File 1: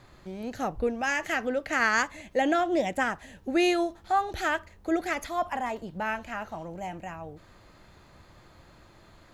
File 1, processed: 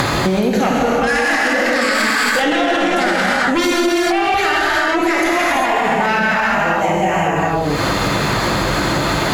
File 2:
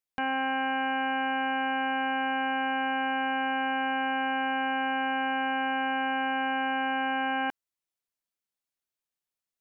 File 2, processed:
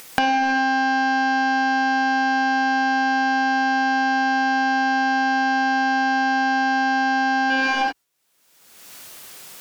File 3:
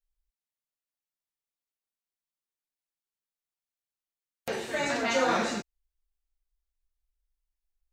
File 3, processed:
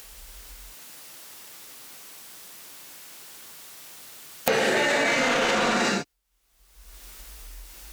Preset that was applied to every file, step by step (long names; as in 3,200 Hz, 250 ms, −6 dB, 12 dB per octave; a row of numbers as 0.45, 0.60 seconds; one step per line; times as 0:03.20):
noise gate with hold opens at −49 dBFS
high-pass filter 45 Hz 24 dB per octave
sine wavefolder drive 11 dB, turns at −11 dBFS
parametric band 73 Hz −13 dB 0.78 octaves
reverb whose tail is shaped and stops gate 430 ms flat, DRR −7 dB
dynamic equaliser 2,100 Hz, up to +4 dB, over −23 dBFS, Q 0.82
upward compression, threshold −13 dBFS
brickwall limiter −5 dBFS
downward compressor 10 to 1, threshold −22 dBFS
normalise the peak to −3 dBFS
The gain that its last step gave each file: +9.5, +5.0, +2.5 decibels